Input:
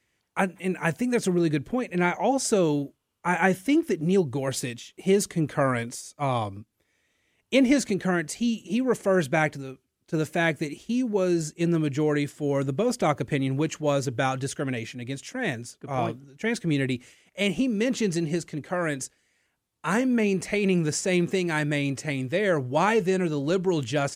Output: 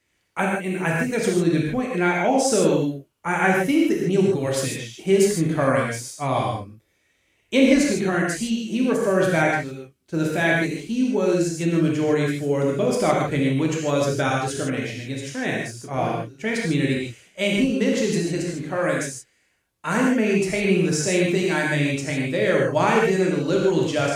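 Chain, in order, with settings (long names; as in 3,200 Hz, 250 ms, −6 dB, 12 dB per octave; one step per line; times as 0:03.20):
reverb whose tail is shaped and stops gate 180 ms flat, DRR −2.5 dB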